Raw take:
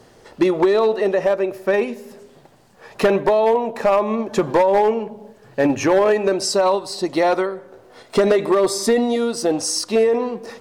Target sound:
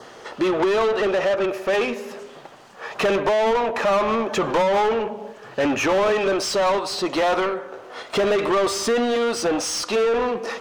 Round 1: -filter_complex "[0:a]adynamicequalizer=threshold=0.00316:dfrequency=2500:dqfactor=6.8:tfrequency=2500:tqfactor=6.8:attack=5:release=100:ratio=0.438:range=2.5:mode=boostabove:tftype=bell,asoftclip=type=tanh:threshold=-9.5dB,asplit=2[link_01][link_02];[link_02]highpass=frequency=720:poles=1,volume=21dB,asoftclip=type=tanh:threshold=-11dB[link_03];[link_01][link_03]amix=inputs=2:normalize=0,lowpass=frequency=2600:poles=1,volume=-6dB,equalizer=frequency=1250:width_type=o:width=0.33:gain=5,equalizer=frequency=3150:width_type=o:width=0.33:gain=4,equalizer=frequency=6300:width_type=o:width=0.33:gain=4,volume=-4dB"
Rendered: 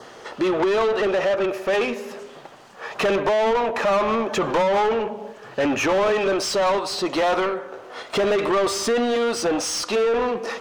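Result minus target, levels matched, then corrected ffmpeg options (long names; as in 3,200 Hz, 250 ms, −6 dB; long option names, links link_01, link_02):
soft clipping: distortion +11 dB
-filter_complex "[0:a]adynamicequalizer=threshold=0.00316:dfrequency=2500:dqfactor=6.8:tfrequency=2500:tqfactor=6.8:attack=5:release=100:ratio=0.438:range=2.5:mode=boostabove:tftype=bell,asoftclip=type=tanh:threshold=-3dB,asplit=2[link_01][link_02];[link_02]highpass=frequency=720:poles=1,volume=21dB,asoftclip=type=tanh:threshold=-11dB[link_03];[link_01][link_03]amix=inputs=2:normalize=0,lowpass=frequency=2600:poles=1,volume=-6dB,equalizer=frequency=1250:width_type=o:width=0.33:gain=5,equalizer=frequency=3150:width_type=o:width=0.33:gain=4,equalizer=frequency=6300:width_type=o:width=0.33:gain=4,volume=-4dB"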